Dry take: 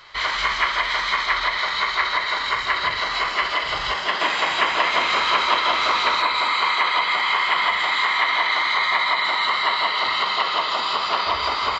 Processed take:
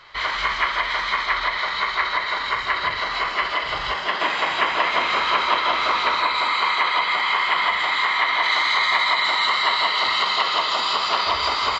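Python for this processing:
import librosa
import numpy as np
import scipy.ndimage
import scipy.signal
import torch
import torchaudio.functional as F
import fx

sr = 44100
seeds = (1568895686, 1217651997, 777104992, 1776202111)

y = fx.high_shelf(x, sr, hz=6000.0, db=fx.steps((0.0, -10.0), (6.21, -4.0), (8.42, 9.0)))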